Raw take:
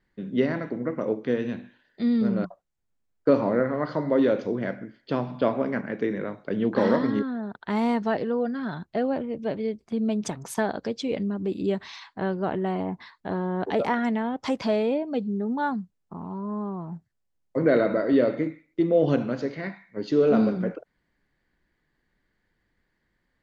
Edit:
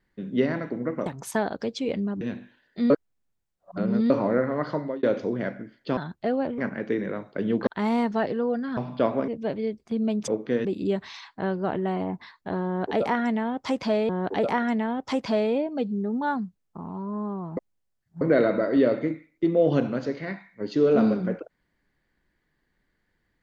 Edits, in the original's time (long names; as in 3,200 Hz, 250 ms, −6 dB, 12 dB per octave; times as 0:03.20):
0:01.06–0:01.43: swap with 0:10.29–0:11.44
0:02.12–0:03.32: reverse
0:03.95–0:04.25: fade out
0:05.19–0:05.70: swap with 0:08.68–0:09.29
0:06.79–0:07.58: remove
0:13.45–0:14.88: repeat, 2 plays
0:16.93–0:17.57: reverse